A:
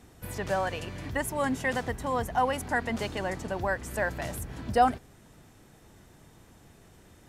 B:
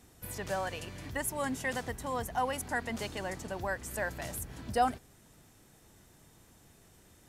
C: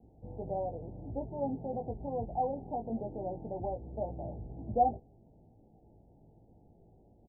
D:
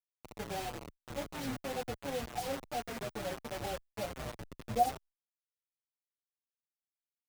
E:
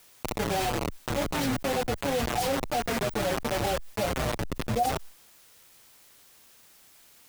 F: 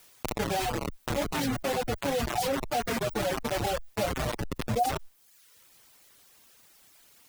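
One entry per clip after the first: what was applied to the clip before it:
treble shelf 4.4 kHz +8.5 dB; trim -6 dB
steep low-pass 850 Hz 96 dB/octave; doubling 18 ms -5 dB
word length cut 6-bit, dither none; endless flanger 6.6 ms -2.5 Hz
level flattener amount 70%
reverb removal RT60 0.81 s

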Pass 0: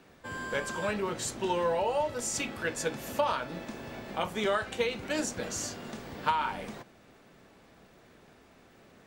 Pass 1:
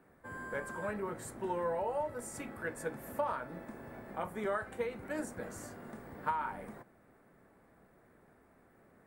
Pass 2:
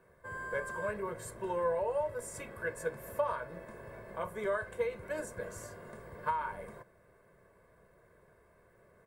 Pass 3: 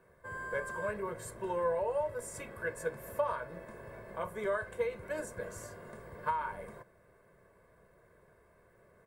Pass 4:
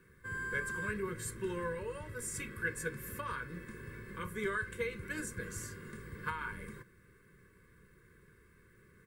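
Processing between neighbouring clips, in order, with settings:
high-order bell 4.2 kHz -15 dB; trim -6 dB
comb 1.9 ms, depth 74%; trim -1 dB
no audible change
Butterworth band-stop 710 Hz, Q 0.7; trim +5 dB

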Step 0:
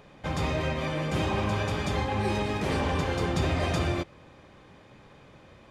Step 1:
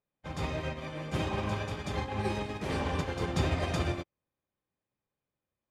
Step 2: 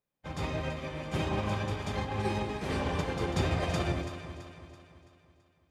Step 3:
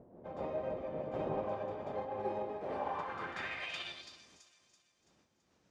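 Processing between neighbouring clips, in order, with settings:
upward expansion 2.5:1, over -49 dBFS
echo whose repeats swap between lows and highs 166 ms, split 1.1 kHz, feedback 68%, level -7 dB
wind noise 180 Hz -35 dBFS; band-pass sweep 590 Hz -> 6.3 kHz, 2.65–4.31 s; trim +2 dB

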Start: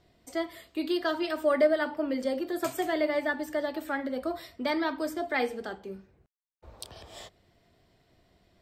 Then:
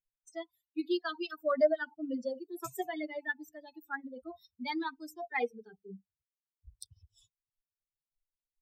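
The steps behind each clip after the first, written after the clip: expander on every frequency bin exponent 3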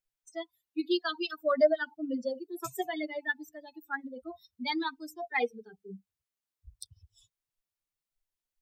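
dynamic bell 3.8 kHz, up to +6 dB, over -54 dBFS, Q 1.4; trim +2.5 dB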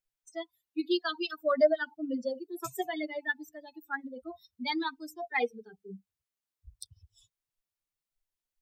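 no audible change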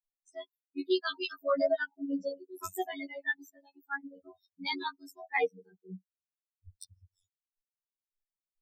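expander on every frequency bin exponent 1.5; robot voice 93.1 Hz; tape noise reduction on one side only decoder only; trim +3 dB

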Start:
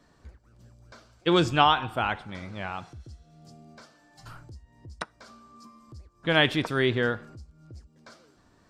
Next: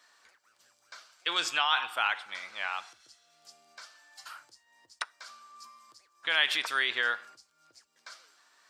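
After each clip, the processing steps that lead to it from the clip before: peak limiter -17 dBFS, peak gain reduction 9.5 dB; high-pass 1.4 kHz 12 dB/octave; trim +6 dB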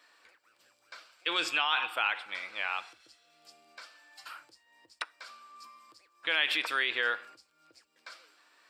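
graphic EQ with 31 bands 315 Hz +8 dB, 500 Hz +6 dB, 2.5 kHz +6 dB, 6.3 kHz -9 dB, 10 kHz -4 dB; in parallel at +1.5 dB: peak limiter -20 dBFS, peak gain reduction 11 dB; on the sum: trim -7 dB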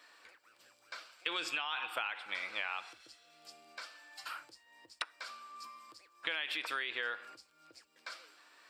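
compression 10:1, threshold -35 dBFS, peak gain reduction 13 dB; trim +2 dB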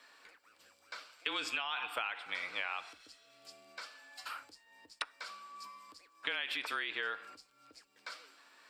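frequency shift -28 Hz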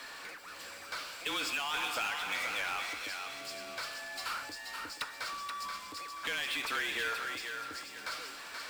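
power-law waveshaper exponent 0.5; thinning echo 479 ms, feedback 35%, high-pass 510 Hz, level -5 dB; trim -6 dB

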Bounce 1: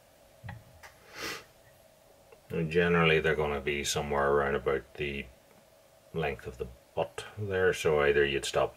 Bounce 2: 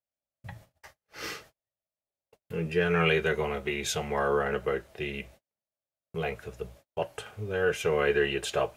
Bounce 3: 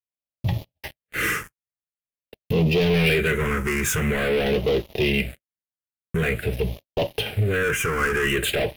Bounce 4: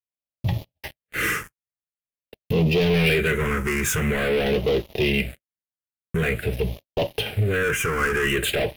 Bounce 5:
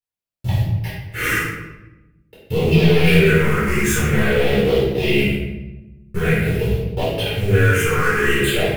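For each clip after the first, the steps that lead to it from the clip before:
gate -51 dBFS, range -40 dB
in parallel at +0.5 dB: compression 12:1, threshold -36 dBFS, peak gain reduction 16 dB; on the sum: waveshaping leveller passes 5; phase shifter stages 4, 0.47 Hz, lowest notch 640–1500 Hz; trim -3.5 dB
no audible change
block-companded coder 5-bit; simulated room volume 430 m³, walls mixed, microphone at 4.2 m; trim -6 dB

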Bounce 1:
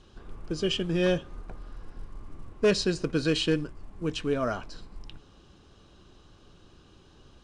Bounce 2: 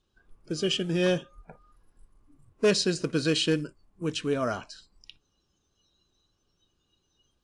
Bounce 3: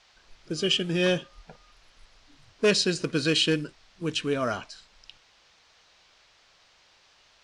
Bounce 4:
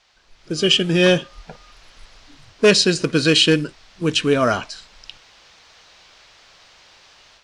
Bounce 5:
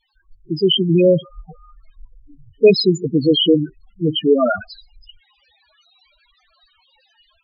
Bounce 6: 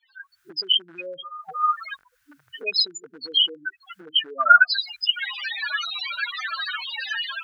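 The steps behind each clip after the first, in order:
spectral noise reduction 20 dB; treble shelf 6.4 kHz +9.5 dB
dynamic bell 2.7 kHz, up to +5 dB, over -44 dBFS, Q 0.74; band noise 460–5400 Hz -61 dBFS
level rider gain up to 10.5 dB
word length cut 10-bit, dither none; loudest bins only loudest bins 4; trim +5 dB
recorder AGC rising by 76 dB/s; resonant high-pass 1.5 kHz, resonance Q 6.7; trim -5 dB

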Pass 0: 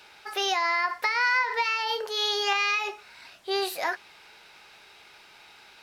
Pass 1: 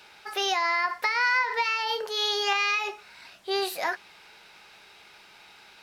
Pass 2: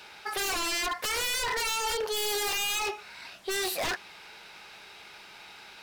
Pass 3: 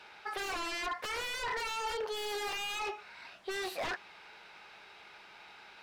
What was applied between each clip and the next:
peaking EQ 190 Hz +5.5 dB 0.23 oct
wavefolder -28.5 dBFS; trim +3.5 dB
overdrive pedal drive 3 dB, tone 1.7 kHz, clips at -24.5 dBFS; trim -2 dB

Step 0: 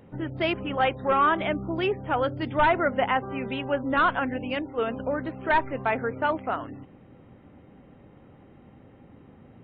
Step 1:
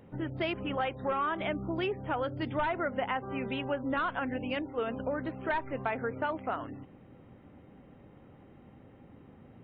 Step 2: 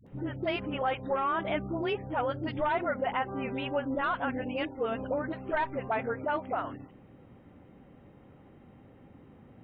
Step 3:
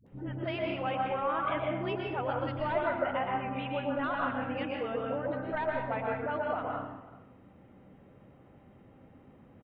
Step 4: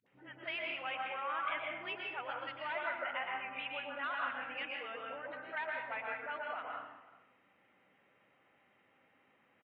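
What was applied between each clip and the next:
compression 6:1, threshold -25 dBFS, peak gain reduction 8 dB; trim -3 dB
dynamic bell 720 Hz, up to +3 dB, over -41 dBFS, Q 1.1; phase dispersion highs, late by 66 ms, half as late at 460 Hz
delay 378 ms -20 dB; plate-style reverb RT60 0.77 s, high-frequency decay 0.75×, pre-delay 105 ms, DRR -1 dB; trim -5 dB
band-pass filter 2.3 kHz, Q 1.5; trim +2.5 dB

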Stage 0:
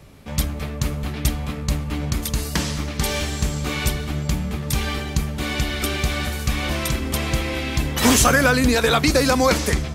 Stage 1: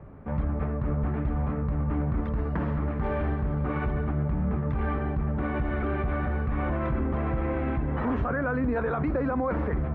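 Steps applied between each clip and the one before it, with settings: low-pass 1.5 kHz 24 dB/octave; in parallel at -3 dB: compressor with a negative ratio -26 dBFS; on the sum: peak limiter -14 dBFS, peak gain reduction 10 dB; trim -5.5 dB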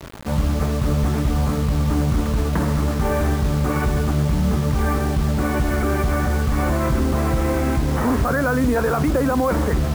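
bit crusher 7-bit; trim +8 dB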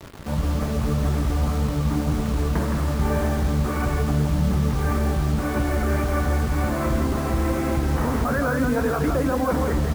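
delay 167 ms -4.5 dB; flange 1.8 Hz, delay 8.4 ms, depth 6.7 ms, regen -64%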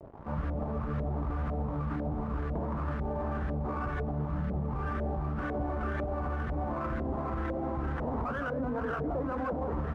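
LFO low-pass saw up 2 Hz 600–1800 Hz; peak limiter -16 dBFS, peak gain reduction 7.5 dB; sliding maximum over 3 samples; trim -9 dB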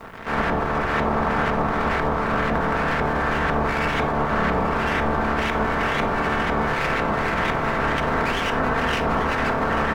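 spectral peaks clipped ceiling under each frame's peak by 30 dB; delay 839 ms -11.5 dB; reverberation RT60 0.75 s, pre-delay 4 ms, DRR 4.5 dB; trim +9 dB

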